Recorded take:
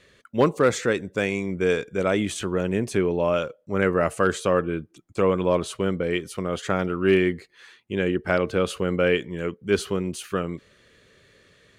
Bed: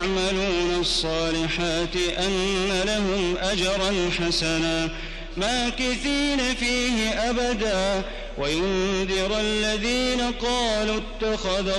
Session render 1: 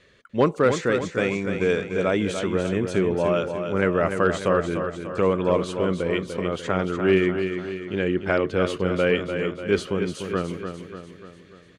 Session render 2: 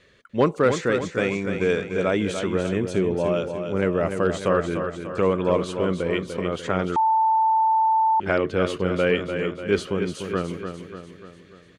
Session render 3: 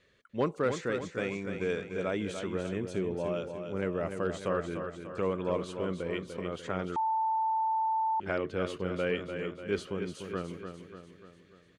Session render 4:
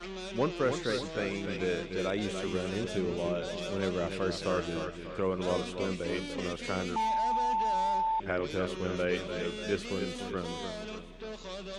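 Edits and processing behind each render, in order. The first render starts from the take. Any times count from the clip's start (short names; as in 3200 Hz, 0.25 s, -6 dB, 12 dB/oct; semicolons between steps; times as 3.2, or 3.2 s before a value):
air absorption 57 m; feedback echo 0.295 s, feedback 52%, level -7.5 dB
2.82–4.43 bell 1500 Hz -5.5 dB 1.4 oct; 6.96–8.2 bleep 886 Hz -16 dBFS
gain -10 dB
add bed -17 dB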